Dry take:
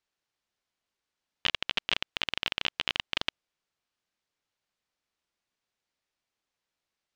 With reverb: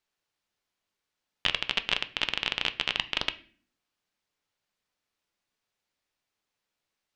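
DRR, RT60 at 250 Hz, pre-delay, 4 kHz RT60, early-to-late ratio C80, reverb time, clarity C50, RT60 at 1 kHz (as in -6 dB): 10.0 dB, 0.70 s, 5 ms, 0.40 s, 21.5 dB, 0.45 s, 17.5 dB, 0.40 s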